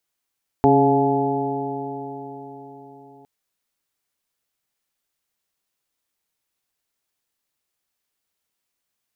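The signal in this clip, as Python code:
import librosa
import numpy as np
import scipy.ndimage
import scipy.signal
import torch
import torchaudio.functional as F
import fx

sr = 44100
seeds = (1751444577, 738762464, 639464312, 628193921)

y = fx.additive_stiff(sr, length_s=2.61, hz=137.0, level_db=-21, upper_db=(5.0, 5.5, -9.0, 2.5, 4), decay_s=4.5, stiffness=0.0022)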